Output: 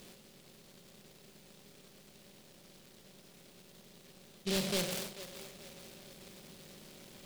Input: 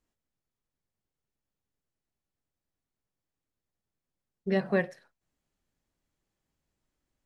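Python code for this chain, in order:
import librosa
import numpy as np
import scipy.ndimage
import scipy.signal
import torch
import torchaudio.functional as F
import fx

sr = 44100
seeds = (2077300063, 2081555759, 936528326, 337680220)

p1 = fx.bin_compress(x, sr, power=0.6)
p2 = fx.over_compress(p1, sr, threshold_db=-42.0, ratio=-0.5)
p3 = p1 + (p2 * librosa.db_to_amplitude(-3.0))
p4 = 10.0 ** (-24.5 / 20.0) * np.tanh(p3 / 10.0 ** (-24.5 / 20.0))
p5 = p4 + fx.echo_split(p4, sr, split_hz=390.0, low_ms=125, high_ms=440, feedback_pct=52, wet_db=-13.0, dry=0)
p6 = fx.noise_mod_delay(p5, sr, seeds[0], noise_hz=3500.0, depth_ms=0.25)
y = p6 * librosa.db_to_amplitude(-3.5)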